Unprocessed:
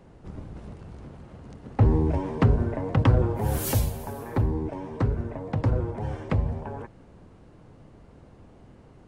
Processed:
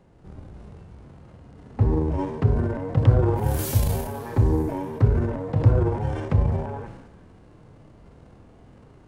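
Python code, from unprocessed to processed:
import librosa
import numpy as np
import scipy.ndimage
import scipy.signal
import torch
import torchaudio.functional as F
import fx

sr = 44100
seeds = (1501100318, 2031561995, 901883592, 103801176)

p1 = fx.transient(x, sr, attack_db=8, sustain_db=12)
p2 = fx.hpss(p1, sr, part='percussive', gain_db=-15)
p3 = fx.rider(p2, sr, range_db=10, speed_s=2.0)
p4 = p3 + fx.echo_stepped(p3, sr, ms=188, hz=1400.0, octaves=0.7, feedback_pct=70, wet_db=-12, dry=0)
y = F.gain(torch.from_numpy(p4), 1.0).numpy()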